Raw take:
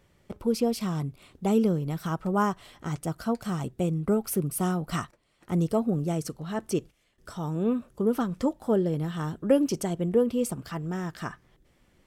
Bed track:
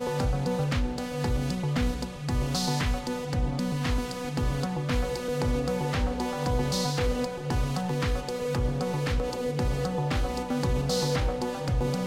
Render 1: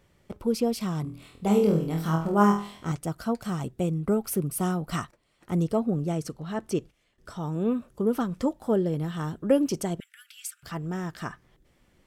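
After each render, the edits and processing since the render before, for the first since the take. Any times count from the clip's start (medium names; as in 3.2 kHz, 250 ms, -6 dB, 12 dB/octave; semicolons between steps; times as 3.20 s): 1.02–2.92 s: flutter echo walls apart 4.2 m, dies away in 0.44 s; 5.63–7.53 s: treble shelf 7.8 kHz -6.5 dB; 10.00–10.63 s: steep high-pass 1.4 kHz 96 dB/octave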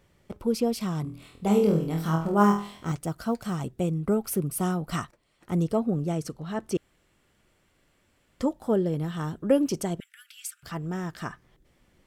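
2.39–3.56 s: companded quantiser 8-bit; 6.77–8.40 s: room tone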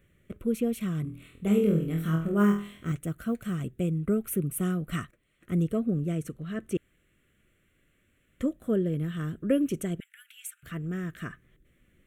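static phaser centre 2.1 kHz, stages 4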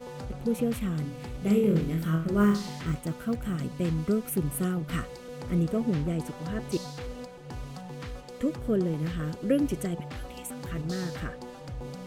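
add bed track -11.5 dB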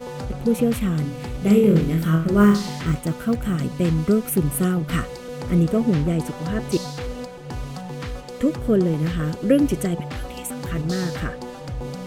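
trim +8 dB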